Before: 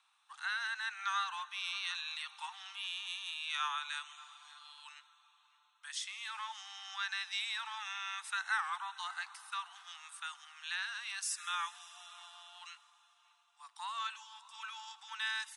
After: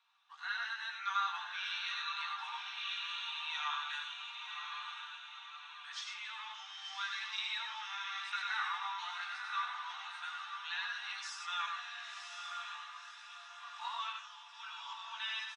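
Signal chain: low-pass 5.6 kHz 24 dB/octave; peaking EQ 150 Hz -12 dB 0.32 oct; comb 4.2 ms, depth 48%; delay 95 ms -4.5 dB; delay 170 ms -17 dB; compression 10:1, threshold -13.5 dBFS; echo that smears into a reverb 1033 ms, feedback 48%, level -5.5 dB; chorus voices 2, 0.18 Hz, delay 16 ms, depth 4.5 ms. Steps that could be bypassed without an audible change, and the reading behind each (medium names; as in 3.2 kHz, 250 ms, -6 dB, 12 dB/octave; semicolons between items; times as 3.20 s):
peaking EQ 150 Hz: input has nothing below 680 Hz; compression, threshold -13.5 dBFS: peak at its input -21.0 dBFS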